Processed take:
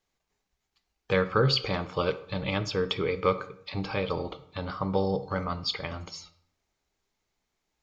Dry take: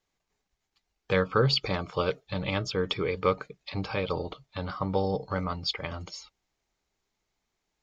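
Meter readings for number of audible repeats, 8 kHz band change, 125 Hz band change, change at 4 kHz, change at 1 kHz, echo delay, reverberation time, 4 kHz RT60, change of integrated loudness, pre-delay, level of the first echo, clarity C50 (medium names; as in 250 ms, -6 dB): no echo, no reading, 0.0 dB, 0.0 dB, +0.5 dB, no echo, 0.70 s, 0.45 s, +0.5 dB, 12 ms, no echo, 14.5 dB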